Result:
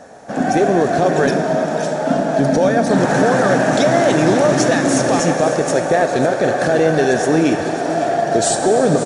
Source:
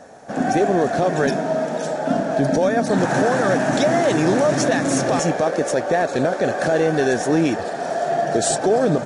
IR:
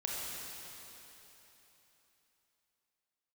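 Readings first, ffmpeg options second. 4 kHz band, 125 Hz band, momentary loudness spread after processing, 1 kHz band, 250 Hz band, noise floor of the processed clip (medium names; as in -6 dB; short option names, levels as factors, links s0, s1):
+4.0 dB, +4.0 dB, 5 LU, +4.0 dB, +4.0 dB, -22 dBFS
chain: -filter_complex "[0:a]aecho=1:1:546:0.211,asplit=2[s0][s1];[1:a]atrim=start_sample=2205[s2];[s1][s2]afir=irnorm=-1:irlink=0,volume=0.501[s3];[s0][s3]amix=inputs=2:normalize=0"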